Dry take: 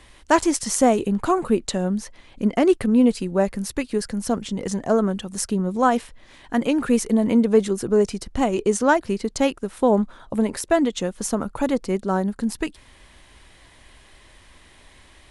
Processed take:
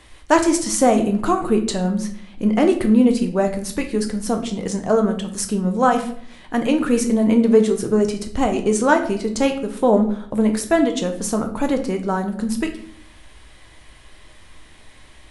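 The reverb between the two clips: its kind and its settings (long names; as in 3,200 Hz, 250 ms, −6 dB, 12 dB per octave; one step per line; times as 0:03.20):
rectangular room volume 86 cubic metres, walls mixed, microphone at 0.5 metres
level +1 dB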